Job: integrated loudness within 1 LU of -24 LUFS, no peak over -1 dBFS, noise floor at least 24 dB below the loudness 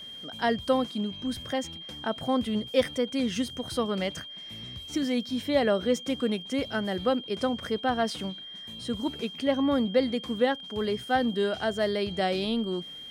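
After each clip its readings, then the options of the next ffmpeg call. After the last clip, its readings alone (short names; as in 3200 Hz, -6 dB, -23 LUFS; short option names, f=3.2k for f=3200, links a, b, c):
steady tone 3200 Hz; tone level -40 dBFS; loudness -28.5 LUFS; peak -12.0 dBFS; loudness target -24.0 LUFS
-> -af "bandreject=f=3.2k:w=30"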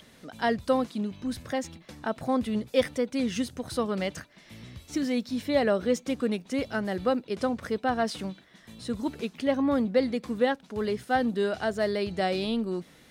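steady tone none; loudness -29.0 LUFS; peak -12.0 dBFS; loudness target -24.0 LUFS
-> -af "volume=5dB"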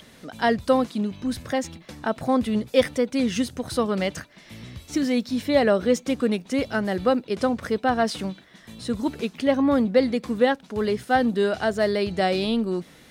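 loudness -24.0 LUFS; peak -7.0 dBFS; noise floor -51 dBFS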